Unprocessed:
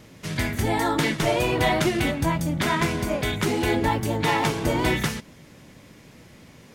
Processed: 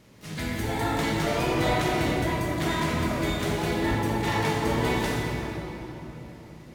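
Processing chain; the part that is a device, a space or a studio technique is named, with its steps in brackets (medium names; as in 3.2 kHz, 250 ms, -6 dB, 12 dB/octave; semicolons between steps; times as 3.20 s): shimmer-style reverb (harmony voices +12 st -10 dB; reverberation RT60 3.9 s, pre-delay 17 ms, DRR -3 dB); trim -8.5 dB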